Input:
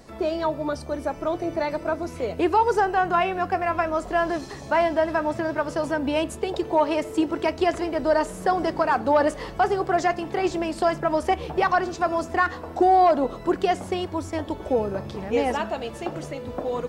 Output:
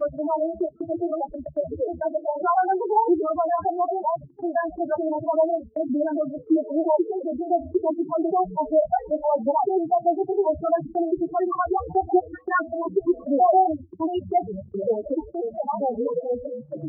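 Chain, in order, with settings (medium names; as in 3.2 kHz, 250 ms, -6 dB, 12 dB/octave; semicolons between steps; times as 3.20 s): slices played last to first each 134 ms, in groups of 6; loudest bins only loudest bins 4; in parallel at +2 dB: peak limiter -20 dBFS, peak gain reduction 9 dB; on the sum: flange 0.72 Hz, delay 4.7 ms, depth 7.6 ms, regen -22%; gate -34 dBFS, range -18 dB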